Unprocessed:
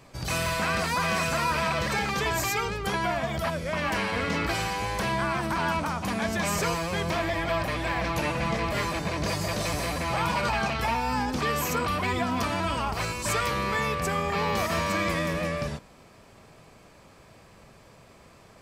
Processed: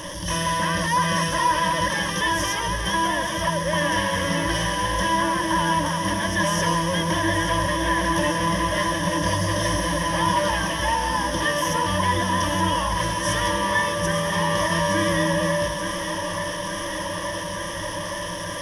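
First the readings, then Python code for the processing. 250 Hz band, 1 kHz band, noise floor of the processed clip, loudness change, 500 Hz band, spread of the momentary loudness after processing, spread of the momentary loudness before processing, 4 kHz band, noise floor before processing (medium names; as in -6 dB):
+5.5 dB, +6.0 dB, -30 dBFS, +4.5 dB, +4.5 dB, 7 LU, 3 LU, +7.5 dB, -53 dBFS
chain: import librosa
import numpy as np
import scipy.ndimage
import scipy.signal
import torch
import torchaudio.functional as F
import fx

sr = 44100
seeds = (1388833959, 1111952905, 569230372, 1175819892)

y = fx.delta_mod(x, sr, bps=64000, step_db=-31.0)
y = fx.ripple_eq(y, sr, per_octave=1.2, db=18)
y = fx.echo_thinned(y, sr, ms=875, feedback_pct=82, hz=150.0, wet_db=-9.0)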